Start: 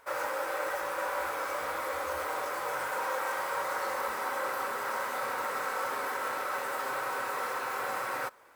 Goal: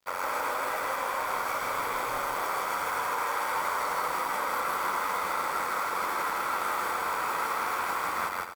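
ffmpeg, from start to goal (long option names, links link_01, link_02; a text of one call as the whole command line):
ffmpeg -i in.wav -filter_complex "[0:a]aecho=1:1:0.9:0.41,alimiter=level_in=1.5dB:limit=-24dB:level=0:latency=1:release=69,volume=-1.5dB,aeval=exprs='val(0)*sin(2*PI*45*n/s)':channel_layout=same,aeval=exprs='val(0)+0.000631*sin(2*PI*4700*n/s)':channel_layout=same,aeval=exprs='sgn(val(0))*max(abs(val(0))-0.00211,0)':channel_layout=same,asplit=2[link_01][link_02];[link_02]aecho=0:1:160.3|250.7:0.891|0.355[link_03];[link_01][link_03]amix=inputs=2:normalize=0,volume=6dB" out.wav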